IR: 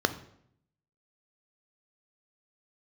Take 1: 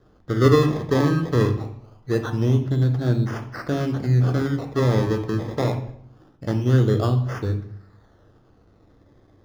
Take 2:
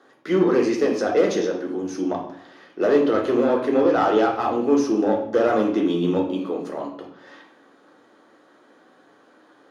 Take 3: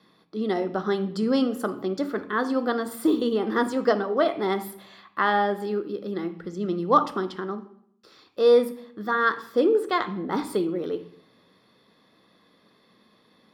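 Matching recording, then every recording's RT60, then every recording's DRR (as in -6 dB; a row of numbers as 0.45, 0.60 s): 3; 0.70, 0.70, 0.70 s; 6.0, 0.0, 10.5 dB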